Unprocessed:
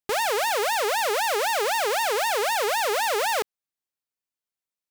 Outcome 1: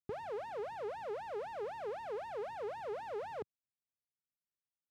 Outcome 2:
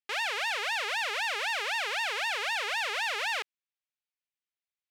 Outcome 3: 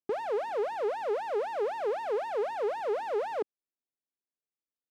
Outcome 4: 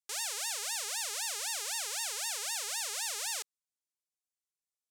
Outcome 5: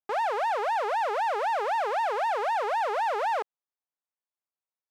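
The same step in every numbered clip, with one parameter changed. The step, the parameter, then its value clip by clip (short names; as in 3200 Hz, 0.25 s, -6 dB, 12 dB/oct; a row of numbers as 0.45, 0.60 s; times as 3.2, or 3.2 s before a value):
band-pass, frequency: 120, 2500, 320, 7600, 860 Hz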